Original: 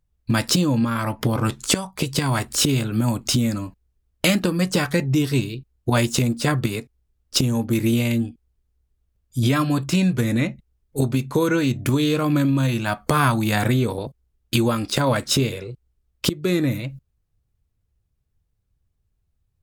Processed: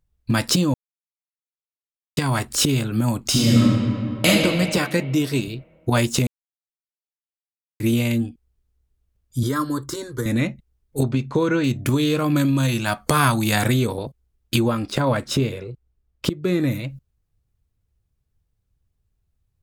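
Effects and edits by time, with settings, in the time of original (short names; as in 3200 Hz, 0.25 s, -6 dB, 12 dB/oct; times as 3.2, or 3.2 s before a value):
0.74–2.17 mute
3.3–4.27 reverb throw, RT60 2.4 s, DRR -6 dB
4.77–5.48 HPF 150 Hz
6.27–7.8 mute
9.43–10.26 fixed phaser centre 690 Hz, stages 6
11.03–11.64 air absorption 100 m
12.36–13.87 bell 8200 Hz +6 dB 2.5 oct
14.59–16.6 high shelf 3100 Hz -8.5 dB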